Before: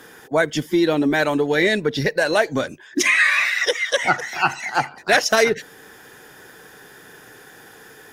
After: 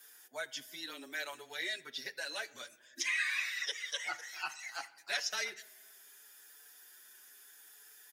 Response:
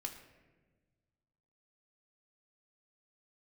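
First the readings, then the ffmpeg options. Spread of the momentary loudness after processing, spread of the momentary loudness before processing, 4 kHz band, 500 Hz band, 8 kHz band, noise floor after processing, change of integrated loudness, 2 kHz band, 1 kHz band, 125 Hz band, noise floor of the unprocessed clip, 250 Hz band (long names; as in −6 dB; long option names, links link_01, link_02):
21 LU, 8 LU, −13.0 dB, −29.0 dB, −14.0 dB, −61 dBFS, −18.5 dB, −18.0 dB, −24.0 dB, below −40 dB, −46 dBFS, −34.5 dB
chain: -filter_complex "[0:a]acrossover=split=5700[link_01][link_02];[link_02]acompressor=threshold=-47dB:ratio=4:attack=1:release=60[link_03];[link_01][link_03]amix=inputs=2:normalize=0,highpass=100,aderivative,afreqshift=-15,asplit=2[link_04][link_05];[1:a]atrim=start_sample=2205[link_06];[link_05][link_06]afir=irnorm=-1:irlink=0,volume=-6.5dB[link_07];[link_04][link_07]amix=inputs=2:normalize=0,asplit=2[link_08][link_09];[link_09]adelay=6.5,afreqshift=0.76[link_10];[link_08][link_10]amix=inputs=2:normalize=1,volume=-6dB"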